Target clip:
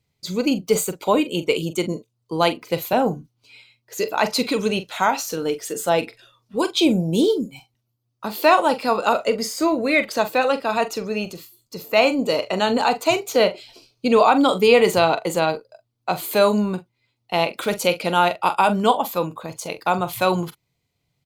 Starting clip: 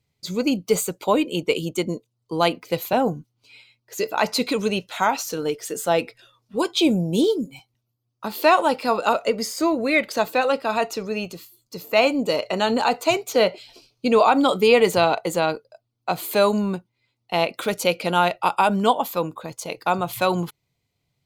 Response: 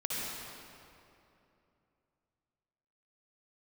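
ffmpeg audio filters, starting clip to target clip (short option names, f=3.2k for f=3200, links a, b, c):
-filter_complex "[0:a]asplit=2[a][b];[b]adelay=43,volume=-12dB[c];[a][c]amix=inputs=2:normalize=0,volume=1dB"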